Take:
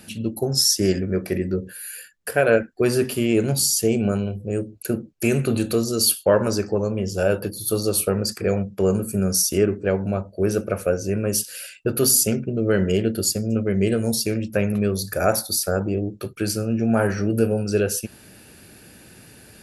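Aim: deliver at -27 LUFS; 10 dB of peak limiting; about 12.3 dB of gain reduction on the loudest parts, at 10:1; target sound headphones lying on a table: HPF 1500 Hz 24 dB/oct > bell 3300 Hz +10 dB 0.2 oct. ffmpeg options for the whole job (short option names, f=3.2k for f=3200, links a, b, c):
-af "acompressor=threshold=-25dB:ratio=10,alimiter=limit=-23.5dB:level=0:latency=1,highpass=f=1.5k:w=0.5412,highpass=f=1.5k:w=1.3066,equalizer=f=3.3k:t=o:w=0.2:g=10,volume=11dB"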